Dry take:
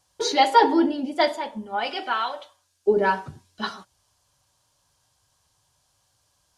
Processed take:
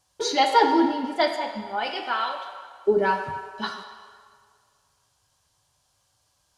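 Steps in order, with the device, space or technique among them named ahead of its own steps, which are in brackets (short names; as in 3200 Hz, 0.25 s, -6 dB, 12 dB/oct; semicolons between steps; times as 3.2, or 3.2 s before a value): filtered reverb send (on a send: HPF 500 Hz 12 dB/oct + LPF 7400 Hz + reverb RT60 2.0 s, pre-delay 3 ms, DRR 5 dB); on the sum: gain -1.5 dB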